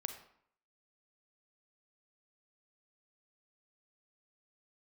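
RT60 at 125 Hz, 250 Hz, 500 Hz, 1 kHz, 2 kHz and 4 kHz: 0.60 s, 0.65 s, 0.65 s, 0.65 s, 0.60 s, 0.45 s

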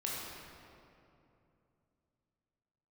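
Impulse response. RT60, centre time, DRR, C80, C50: 2.8 s, 141 ms, -5.5 dB, -0.5 dB, -2.0 dB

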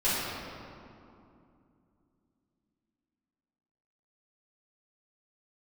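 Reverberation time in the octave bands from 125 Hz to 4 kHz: 3.4 s, 3.7 s, 2.7 s, 2.6 s, 1.9 s, 1.4 s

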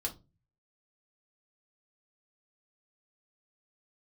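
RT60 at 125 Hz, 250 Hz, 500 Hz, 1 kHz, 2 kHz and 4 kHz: 0.70 s, 0.45 s, 0.30 s, 0.25 s, 0.20 s, 0.20 s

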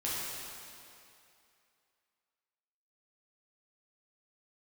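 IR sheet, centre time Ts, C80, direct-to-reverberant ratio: 168 ms, -1.5 dB, -8.0 dB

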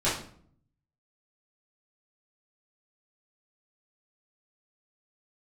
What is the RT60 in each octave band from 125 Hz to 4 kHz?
1.0 s, 0.80 s, 0.60 s, 0.50 s, 0.45 s, 0.40 s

